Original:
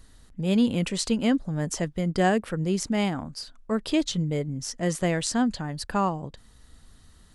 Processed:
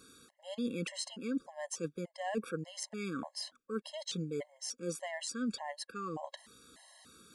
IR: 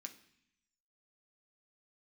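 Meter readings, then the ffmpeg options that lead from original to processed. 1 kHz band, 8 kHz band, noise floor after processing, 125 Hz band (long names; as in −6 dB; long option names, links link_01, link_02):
−13.5 dB, −9.0 dB, −75 dBFS, −17.5 dB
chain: -af "highpass=290,areverse,acompressor=threshold=-38dB:ratio=10,areverse,afftfilt=real='re*gt(sin(2*PI*1.7*pts/sr)*(1-2*mod(floor(b*sr/1024/550),2)),0)':imag='im*gt(sin(2*PI*1.7*pts/sr)*(1-2*mod(floor(b*sr/1024/550),2)),0)':win_size=1024:overlap=0.75,volume=5.5dB"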